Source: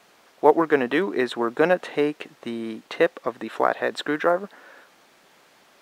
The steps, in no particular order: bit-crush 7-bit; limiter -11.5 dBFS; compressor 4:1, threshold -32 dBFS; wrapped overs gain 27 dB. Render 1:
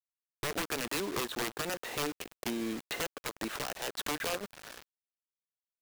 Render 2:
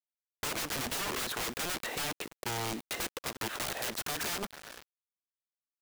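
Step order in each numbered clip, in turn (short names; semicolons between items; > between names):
limiter > compressor > wrapped overs > bit-crush; limiter > wrapped overs > bit-crush > compressor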